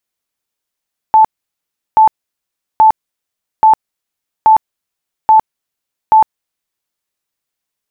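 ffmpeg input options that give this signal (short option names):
-f lavfi -i "aevalsrc='0.708*sin(2*PI*875*mod(t,0.83))*lt(mod(t,0.83),93/875)':d=5.81:s=44100"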